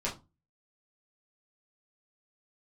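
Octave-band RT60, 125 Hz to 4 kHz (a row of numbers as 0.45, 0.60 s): 0.45, 0.35, 0.25, 0.25, 0.20, 0.20 s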